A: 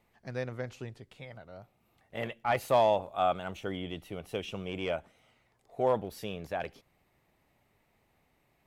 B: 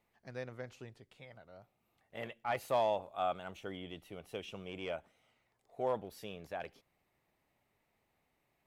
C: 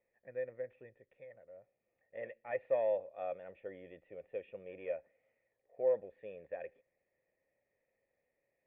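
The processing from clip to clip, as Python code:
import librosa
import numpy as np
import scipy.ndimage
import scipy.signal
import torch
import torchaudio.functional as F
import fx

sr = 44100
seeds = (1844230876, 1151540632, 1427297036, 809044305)

y1 = fx.low_shelf(x, sr, hz=210.0, db=-4.5)
y1 = y1 * librosa.db_to_amplitude(-6.5)
y2 = fx.formant_cascade(y1, sr, vowel='e')
y2 = y2 * librosa.db_to_amplitude(7.5)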